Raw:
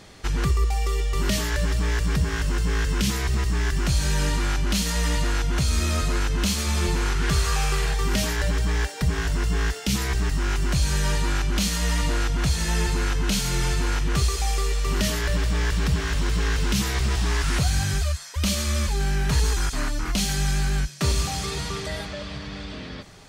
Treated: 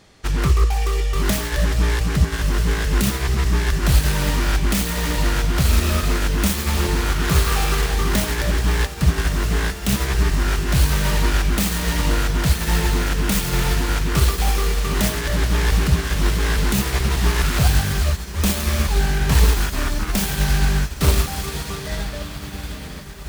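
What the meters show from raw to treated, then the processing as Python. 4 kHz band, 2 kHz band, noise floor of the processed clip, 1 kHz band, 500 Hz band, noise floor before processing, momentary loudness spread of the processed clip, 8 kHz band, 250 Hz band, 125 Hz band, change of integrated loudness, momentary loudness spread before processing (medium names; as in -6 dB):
+2.5 dB, +4.0 dB, -32 dBFS, +4.5 dB, +4.5 dB, -36 dBFS, 4 LU, +2.5 dB, +4.5 dB, +4.5 dB, +4.5 dB, 4 LU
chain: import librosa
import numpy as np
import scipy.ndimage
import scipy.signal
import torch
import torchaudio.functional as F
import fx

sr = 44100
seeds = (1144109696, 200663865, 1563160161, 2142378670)

y = fx.self_delay(x, sr, depth_ms=0.28)
y = fx.echo_diffused(y, sr, ms=1291, feedback_pct=75, wet_db=-12)
y = fx.upward_expand(y, sr, threshold_db=-39.0, expansion=1.5)
y = y * 10.0 ** (7.0 / 20.0)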